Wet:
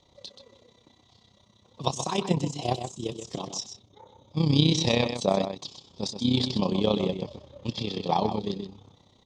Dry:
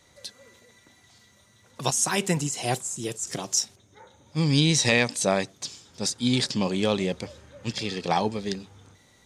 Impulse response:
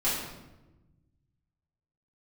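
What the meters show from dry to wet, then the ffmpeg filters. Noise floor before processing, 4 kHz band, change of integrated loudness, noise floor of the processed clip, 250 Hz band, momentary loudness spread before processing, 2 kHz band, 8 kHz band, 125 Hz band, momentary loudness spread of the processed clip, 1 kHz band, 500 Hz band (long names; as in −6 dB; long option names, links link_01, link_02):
−59 dBFS, −2.0 dB, −2.0 dB, −62 dBFS, 0.0 dB, 15 LU, −10.0 dB, −12.0 dB, 0.0 dB, 16 LU, −0.5 dB, 0.0 dB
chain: -filter_complex "[0:a]firequalizer=gain_entry='entry(1100,0);entry(1500,-17);entry(3400,1);entry(11000,-28)':delay=0.05:min_phase=1,tremolo=f=32:d=0.71,asplit=2[link_01][link_02];[link_02]adelay=128.3,volume=-8dB,highshelf=frequency=4000:gain=-2.89[link_03];[link_01][link_03]amix=inputs=2:normalize=0,volume=2.5dB"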